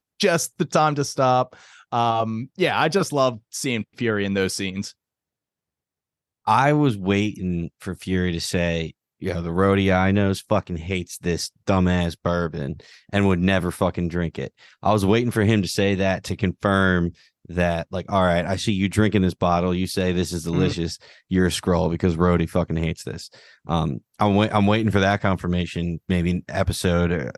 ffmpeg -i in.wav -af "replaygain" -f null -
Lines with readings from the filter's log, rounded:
track_gain = +2.8 dB
track_peak = 0.438